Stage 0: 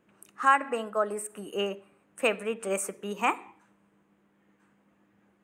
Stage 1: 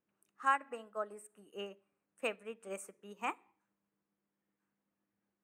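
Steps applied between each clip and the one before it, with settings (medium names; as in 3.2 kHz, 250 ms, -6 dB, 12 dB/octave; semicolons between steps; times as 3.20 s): upward expansion 1.5:1, over -42 dBFS; trim -8.5 dB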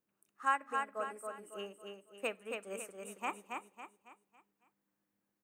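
treble shelf 11 kHz +7.5 dB; on a send: feedback delay 276 ms, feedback 40%, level -4.5 dB; on the sum: trim -1 dB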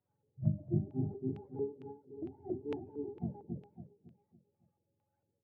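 spectrum inverted on a logarithmic axis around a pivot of 410 Hz; LFO low-pass square 2.2 Hz 420–2800 Hz; endings held to a fixed fall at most 190 dB/s; trim +3.5 dB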